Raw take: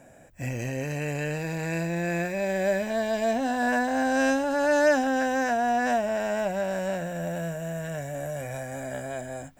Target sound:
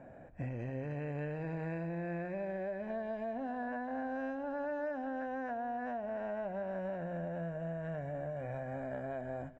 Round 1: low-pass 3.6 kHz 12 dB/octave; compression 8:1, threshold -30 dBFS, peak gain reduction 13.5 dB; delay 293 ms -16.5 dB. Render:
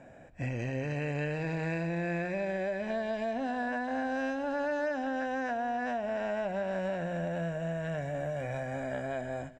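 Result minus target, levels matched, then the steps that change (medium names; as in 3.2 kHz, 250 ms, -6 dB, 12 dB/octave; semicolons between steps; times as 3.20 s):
4 kHz band +11.0 dB; compression: peak gain reduction -5 dB
change: low-pass 1.5 kHz 12 dB/octave; change: compression 8:1, threshold -36.5 dBFS, peak gain reduction 18.5 dB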